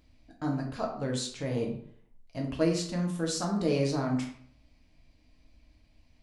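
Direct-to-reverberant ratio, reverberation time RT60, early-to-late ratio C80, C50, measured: −0.5 dB, 0.60 s, 9.5 dB, 5.5 dB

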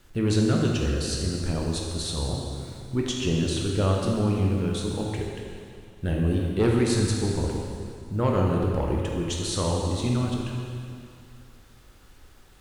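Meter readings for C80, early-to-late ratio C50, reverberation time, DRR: 2.0 dB, 0.5 dB, 2.4 s, −1.5 dB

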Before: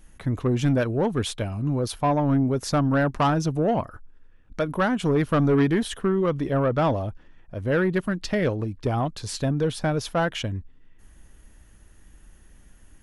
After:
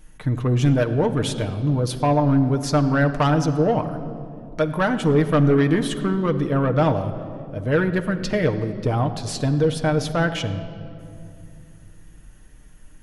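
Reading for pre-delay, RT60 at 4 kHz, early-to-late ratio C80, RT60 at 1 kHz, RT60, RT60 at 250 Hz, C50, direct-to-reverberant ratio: 4 ms, 1.5 s, 12.0 dB, 2.2 s, 2.5 s, 3.6 s, 11.5 dB, 5.0 dB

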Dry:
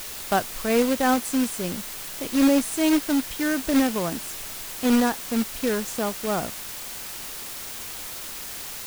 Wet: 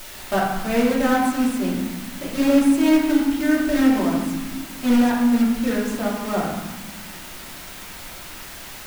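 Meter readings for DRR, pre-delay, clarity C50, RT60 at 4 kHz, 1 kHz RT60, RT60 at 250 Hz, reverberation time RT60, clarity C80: −6.0 dB, 3 ms, 1.5 dB, 0.90 s, 1.3 s, 2.3 s, 1.4 s, 4.5 dB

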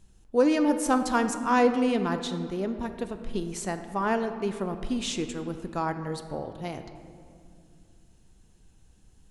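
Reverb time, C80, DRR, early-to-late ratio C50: 2.4 s, 10.0 dB, 8.0 dB, 9.0 dB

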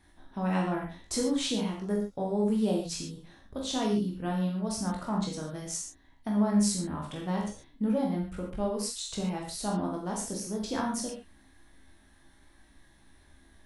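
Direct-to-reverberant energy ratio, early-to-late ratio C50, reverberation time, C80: −1.5 dB, 4.0 dB, non-exponential decay, 8.0 dB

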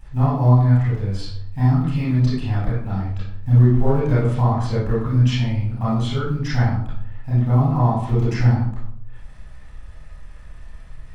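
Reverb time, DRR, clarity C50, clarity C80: 0.70 s, −10.0 dB, −1.0 dB, 5.0 dB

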